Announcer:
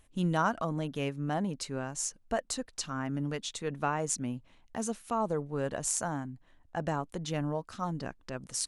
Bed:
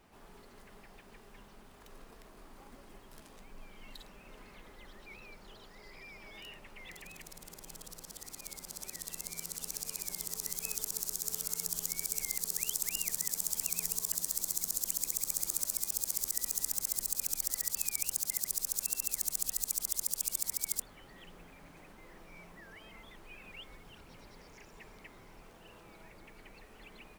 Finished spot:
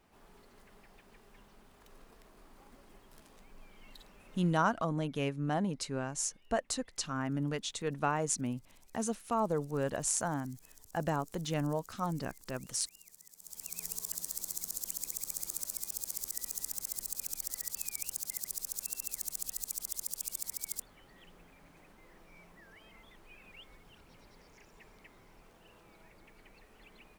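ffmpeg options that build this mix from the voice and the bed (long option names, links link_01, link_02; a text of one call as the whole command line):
ffmpeg -i stem1.wav -i stem2.wav -filter_complex "[0:a]adelay=4200,volume=-0.5dB[link_01];[1:a]volume=14dB,afade=type=out:start_time=4.36:duration=0.48:silence=0.11885,afade=type=in:start_time=13.38:duration=0.53:silence=0.125893[link_02];[link_01][link_02]amix=inputs=2:normalize=0" out.wav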